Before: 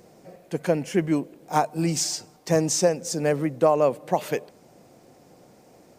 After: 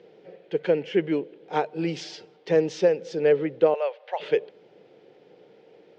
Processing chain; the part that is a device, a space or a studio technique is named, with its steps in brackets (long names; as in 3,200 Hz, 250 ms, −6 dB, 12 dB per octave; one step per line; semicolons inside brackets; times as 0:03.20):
kitchen radio (loudspeaker in its box 220–3,700 Hz, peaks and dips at 250 Hz −10 dB, 440 Hz +9 dB, 680 Hz −8 dB, 1,100 Hz −10 dB, 3,200 Hz +6 dB)
0:03.74–0:04.20: elliptic band-pass filter 630–5,800 Hz, stop band 40 dB